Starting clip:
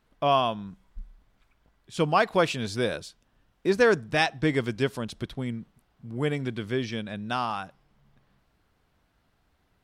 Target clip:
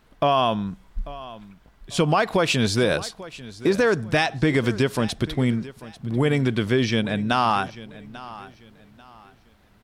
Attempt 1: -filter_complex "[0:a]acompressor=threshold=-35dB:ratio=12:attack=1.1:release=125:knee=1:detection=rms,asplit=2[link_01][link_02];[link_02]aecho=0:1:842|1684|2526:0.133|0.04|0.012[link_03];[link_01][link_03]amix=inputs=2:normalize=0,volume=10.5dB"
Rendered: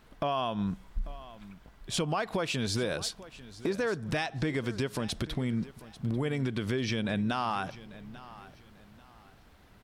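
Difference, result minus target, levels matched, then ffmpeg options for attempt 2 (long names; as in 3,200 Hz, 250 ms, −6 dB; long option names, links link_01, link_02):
downward compressor: peak gain reduction +11 dB
-filter_complex "[0:a]acompressor=threshold=-23dB:ratio=12:attack=1.1:release=125:knee=1:detection=rms,asplit=2[link_01][link_02];[link_02]aecho=0:1:842|1684|2526:0.133|0.04|0.012[link_03];[link_01][link_03]amix=inputs=2:normalize=0,volume=10.5dB"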